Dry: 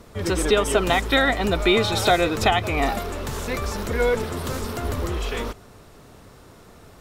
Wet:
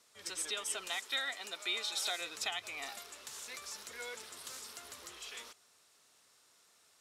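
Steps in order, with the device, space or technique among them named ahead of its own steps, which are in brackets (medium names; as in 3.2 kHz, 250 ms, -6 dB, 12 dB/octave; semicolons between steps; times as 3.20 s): 0.87–2.21 s: high-pass 240 Hz 12 dB/octave; piezo pickup straight into a mixer (low-pass 8.2 kHz 12 dB/octave; differentiator); trim -5 dB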